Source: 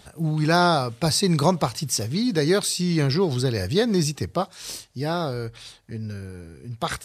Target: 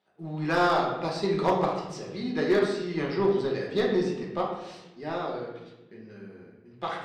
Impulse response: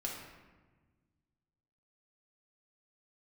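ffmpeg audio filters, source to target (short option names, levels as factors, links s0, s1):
-filter_complex "[0:a]agate=range=0.2:threshold=0.01:ratio=16:detection=peak,highpass=260,lowpass=2900,aeval=exprs='0.422*(cos(1*acos(clip(val(0)/0.422,-1,1)))-cos(1*PI/2))+0.0211*(cos(7*acos(clip(val(0)/0.422,-1,1)))-cos(7*PI/2))':c=same[s0];[1:a]atrim=start_sample=2205,asetrate=61740,aresample=44100[s1];[s0][s1]afir=irnorm=-1:irlink=0,volume=5.96,asoftclip=hard,volume=0.168"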